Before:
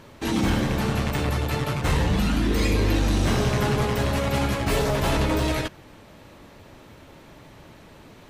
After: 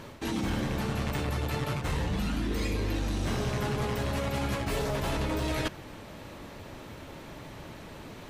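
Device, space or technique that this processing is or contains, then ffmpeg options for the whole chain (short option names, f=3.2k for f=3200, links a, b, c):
compression on the reversed sound: -af "areverse,acompressor=threshold=-31dB:ratio=6,areverse,volume=3dB"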